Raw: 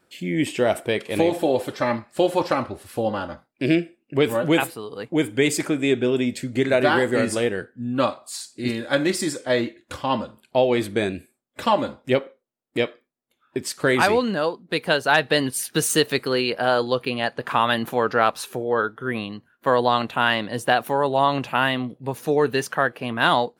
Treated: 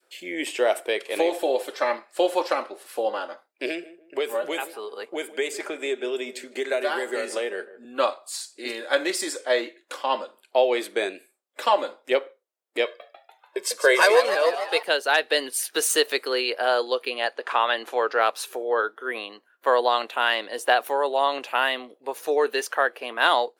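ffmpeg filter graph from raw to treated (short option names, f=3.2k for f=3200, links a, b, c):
-filter_complex "[0:a]asettb=1/sr,asplit=3[a][b][c];[a]atrim=end=3.674[d];[b]atrim=start=3.67:end=7.85,asetpts=PTS-STARTPTS,afade=t=in:d=0.004:c=qsin,afade=t=out:st=4.176:d=0.004:c=qsin,acrossover=split=160|2500|5500[e][f][g][h];[e]acompressor=threshold=-39dB:ratio=3[i];[f]acompressor=threshold=-23dB:ratio=3[j];[g]acompressor=threshold=-41dB:ratio=3[k];[h]acompressor=threshold=-43dB:ratio=3[l];[i][j][k][l]amix=inputs=4:normalize=0,aecho=1:1:5:0.32,atrim=end_sample=184338,asplit=2[m][n];[n]adelay=154,lowpass=f=950:p=1,volume=-15dB,asplit=2[o][p];[p]adelay=154,lowpass=f=950:p=1,volume=0.36,asplit=2[q][r];[r]adelay=154,lowpass=f=950:p=1,volume=0.36[s];[m][o][q][s]amix=inputs=4:normalize=0,atrim=end_sample=184338[t];[c]atrim=start=7.846[u];[d][t]acrossfade=d=0.004:c1=hsin:c2=qsin[v];[v][u]acrossfade=d=0.004:c1=qsin:c2=hsin,asettb=1/sr,asplit=3[w][x][y];[w]atrim=end=12.854[z];[x]atrim=start=12.85:end=14.83,asetpts=PTS-STARTPTS,afade=t=in:d=0.004:c=qsin,afade=t=out:st=1.976:d=0.004:c=qsin,aecho=1:1:1.9:0.87,atrim=end_sample=87318,asplit=9[aa][ab][ac][ad][ae][af][ag][ah][ai];[ab]adelay=146,afreqshift=99,volume=-10dB[aj];[ac]adelay=292,afreqshift=198,volume=-14dB[ak];[ad]adelay=438,afreqshift=297,volume=-18dB[al];[ae]adelay=584,afreqshift=396,volume=-22dB[am];[af]adelay=730,afreqshift=495,volume=-26.1dB[an];[ag]adelay=876,afreqshift=594,volume=-30.1dB[ao];[ah]adelay=1022,afreqshift=693,volume=-34.1dB[ap];[ai]adelay=1168,afreqshift=792,volume=-38.1dB[aq];[aa][aj][ak][al][am][an][ao][ap][aq]amix=inputs=9:normalize=0,atrim=end_sample=87318[ar];[y]atrim=start=14.826[as];[z][ar]acrossfade=d=0.004:c1=hsin:c2=qsin[at];[at][as]acrossfade=d=0.004:c1=qsin:c2=hsin,asettb=1/sr,asplit=3[au][av][aw];[au]atrim=end=17.374[ax];[av]atrim=start=17.37:end=18.18,asetpts=PTS-STARTPTS,afade=t=in:d=0.004:c=qsin,afade=t=out:st=0.806:d=0.004:c=qsin,highpass=220,lowpass=7.9k,acrossover=split=4000[ay][az];[az]acompressor=threshold=-40dB:ratio=4:attack=1:release=60[ba];[ay][ba]amix=inputs=2:normalize=0[bb];[aw]atrim=start=18.176[bc];[ax][bb]acrossfade=d=0.004:c1=hsin:c2=qsin[bd];[bd][bc]acrossfade=d=0.004:c1=qsin:c2=hsin,highpass=f=400:w=0.5412,highpass=f=400:w=1.3066,adynamicequalizer=threshold=0.0224:dfrequency=1000:dqfactor=0.9:tfrequency=1000:tqfactor=0.9:attack=5:release=100:ratio=0.375:range=2.5:mode=cutabove:tftype=bell"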